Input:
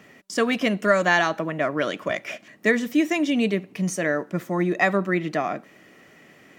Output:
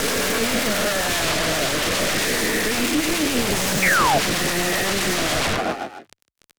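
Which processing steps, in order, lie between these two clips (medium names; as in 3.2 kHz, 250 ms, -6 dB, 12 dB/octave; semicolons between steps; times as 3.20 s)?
reverse spectral sustain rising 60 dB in 2.97 s; Schroeder reverb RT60 0.9 s, combs from 30 ms, DRR 18.5 dB; in parallel at 0 dB: compression, threshold -28 dBFS, peak gain reduction 16 dB; on the sum: fuzz box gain 22 dB, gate -31 dBFS; on a send: frequency-shifting echo 153 ms, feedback 39%, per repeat +32 Hz, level -17.5 dB; on the sum: sine folder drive 13 dB, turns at -9 dBFS; rotary cabinet horn 7.5 Hz; peak limiter -12 dBFS, peak gain reduction 10.5 dB; painted sound fall, 3.82–4.19 s, 630–2400 Hz -18 dBFS; loudspeaker Doppler distortion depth 0.23 ms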